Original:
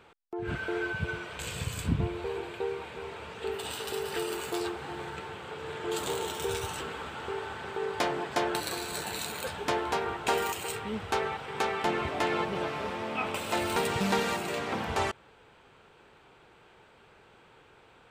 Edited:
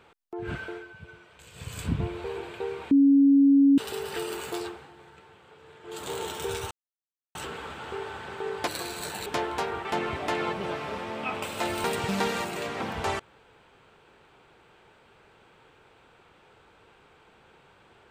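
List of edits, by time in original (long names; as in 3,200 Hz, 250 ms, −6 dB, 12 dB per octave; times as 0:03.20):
0:00.54–0:01.83: duck −14 dB, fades 0.31 s
0:02.91–0:03.78: beep over 278 Hz −14.5 dBFS
0:04.53–0:06.21: duck −13 dB, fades 0.38 s
0:06.71: splice in silence 0.64 s
0:08.03–0:08.59: remove
0:09.18–0:09.60: remove
0:10.19–0:11.77: remove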